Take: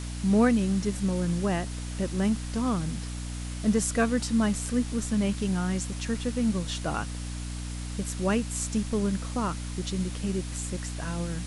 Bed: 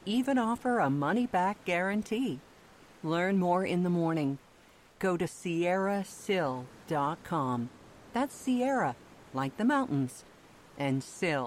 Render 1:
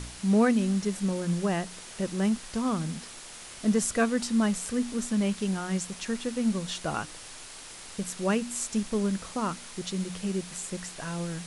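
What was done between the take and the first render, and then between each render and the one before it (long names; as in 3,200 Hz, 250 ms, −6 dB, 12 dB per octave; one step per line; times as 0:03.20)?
hum removal 60 Hz, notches 5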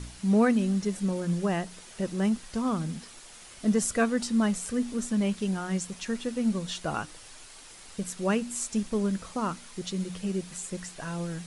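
broadband denoise 6 dB, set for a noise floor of −45 dBFS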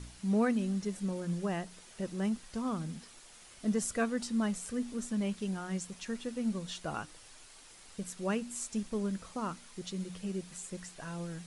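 level −6.5 dB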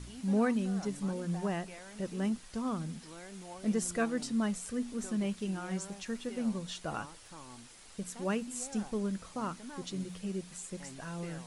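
mix in bed −20 dB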